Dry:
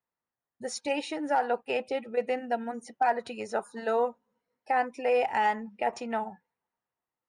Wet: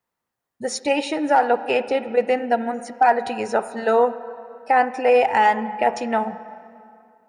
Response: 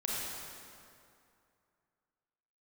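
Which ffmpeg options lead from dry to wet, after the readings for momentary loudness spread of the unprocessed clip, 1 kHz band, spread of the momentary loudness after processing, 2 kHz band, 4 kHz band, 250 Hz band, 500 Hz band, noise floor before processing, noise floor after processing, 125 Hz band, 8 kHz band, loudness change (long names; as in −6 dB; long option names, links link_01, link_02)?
7 LU, +9.5 dB, 11 LU, +9.5 dB, +8.5 dB, +10.0 dB, +9.5 dB, below −85 dBFS, −83 dBFS, can't be measured, +8.5 dB, +9.5 dB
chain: -filter_complex "[0:a]asplit=2[link_01][link_02];[1:a]atrim=start_sample=2205,lowpass=3100[link_03];[link_02][link_03]afir=irnorm=-1:irlink=0,volume=-16dB[link_04];[link_01][link_04]amix=inputs=2:normalize=0,volume=8.5dB"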